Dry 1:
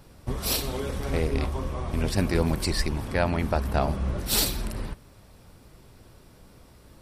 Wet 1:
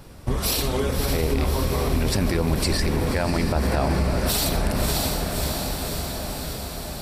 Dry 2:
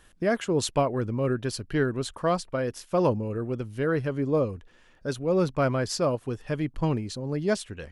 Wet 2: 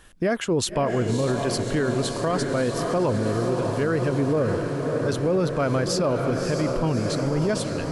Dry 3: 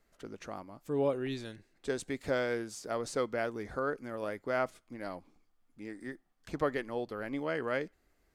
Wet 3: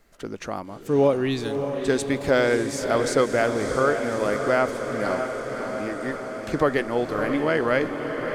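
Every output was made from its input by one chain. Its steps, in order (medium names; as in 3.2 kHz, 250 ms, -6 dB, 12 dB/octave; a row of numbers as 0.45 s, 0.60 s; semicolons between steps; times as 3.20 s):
on a send: echo that smears into a reverb 600 ms, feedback 71%, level -7.5 dB; on the sum: peak limiter -20 dBFS; normalise loudness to -24 LUFS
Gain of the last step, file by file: +7.0 dB, +5.5 dB, +11.5 dB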